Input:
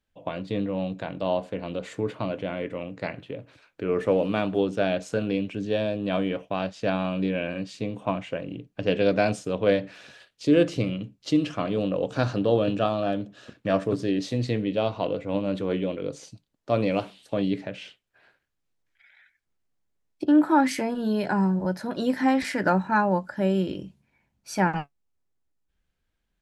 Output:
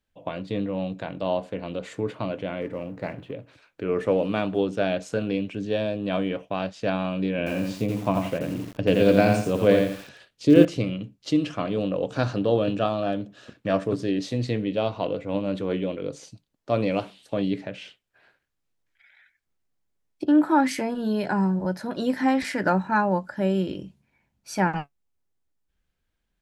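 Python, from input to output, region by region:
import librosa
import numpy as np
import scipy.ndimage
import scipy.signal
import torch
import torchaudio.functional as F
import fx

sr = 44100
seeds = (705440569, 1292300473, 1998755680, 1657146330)

y = fx.chain(x, sr, fx.law_mismatch(coded='mu'),
    fx.high_shelf(hz=2200.0, db=-11.0), at=(2.61, 3.32))
y = fx.chain(y, sr, fx.low_shelf(hz=440.0, db=5.5),
    fx.echo_crushed(ms=84, feedback_pct=35, bits=7, wet_db=-3.5), at=(7.38, 10.65))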